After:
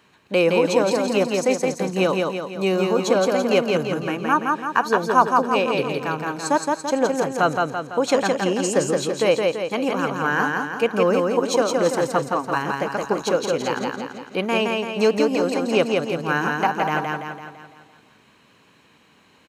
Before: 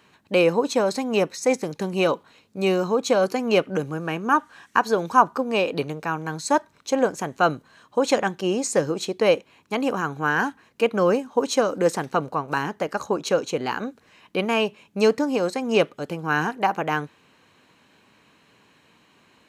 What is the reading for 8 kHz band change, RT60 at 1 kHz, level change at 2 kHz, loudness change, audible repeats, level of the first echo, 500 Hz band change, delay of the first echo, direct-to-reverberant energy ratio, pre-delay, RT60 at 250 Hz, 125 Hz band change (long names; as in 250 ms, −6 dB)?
+2.5 dB, no reverb audible, +2.5 dB, +2.0 dB, 6, −3.0 dB, +2.5 dB, 168 ms, no reverb audible, no reverb audible, no reverb audible, +2.0 dB